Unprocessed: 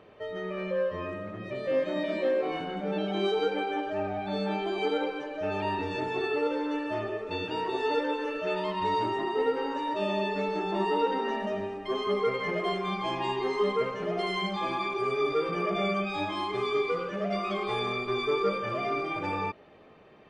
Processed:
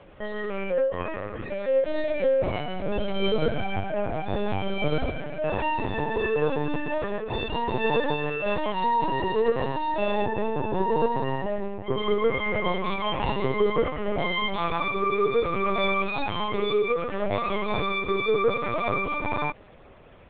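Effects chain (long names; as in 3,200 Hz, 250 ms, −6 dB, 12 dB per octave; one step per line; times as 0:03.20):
linear-prediction vocoder at 8 kHz pitch kept
0:10.26–0:11.98: high-shelf EQ 2,100 Hz −9.5 dB
level +4.5 dB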